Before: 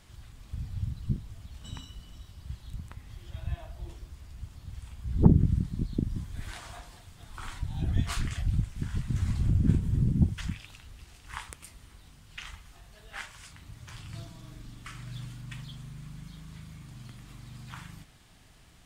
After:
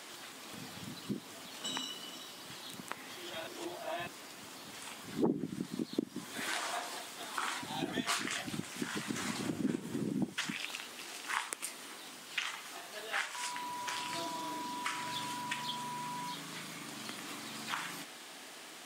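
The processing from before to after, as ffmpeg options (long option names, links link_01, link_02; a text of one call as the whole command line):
ffmpeg -i in.wav -filter_complex "[0:a]asettb=1/sr,asplit=3[link_01][link_02][link_03];[link_01]atrim=end=13.354[link_04];[link_02]atrim=start=13.35:end=16.34,asetpts=PTS-STARTPTS,afade=type=in:duration=0.004:curve=qsin,afade=type=out:start_time=2.986:duration=0.004:curve=qsin,aeval=exprs='val(0)+0.00282*sin(2*PI*980*n/s)':channel_layout=same[link_05];[link_03]atrim=start=16.336[link_06];[link_04][link_05]acrossfade=duration=0.004:curve1=hsin:curve2=qsin[link_07];[link_07][link_06]acrossfade=duration=0.004:curve1=qsin:curve2=hsin,asplit=3[link_08][link_09][link_10];[link_08]atrim=end=3.472[link_11];[link_09]atrim=start=3.468:end=4.072,asetpts=PTS-STARTPTS,areverse[link_12];[link_10]atrim=start=4.068[link_13];[link_11][link_12]acrossfade=duration=0.004:curve1=hsin:curve2=hsin[link_14];[link_14][link_13]acrossfade=duration=0.004:curve1=hsin:curve2=hsin,highpass=frequency=280:width=0.5412,highpass=frequency=280:width=1.3066,acompressor=threshold=-47dB:ratio=2.5,volume=12dB" out.wav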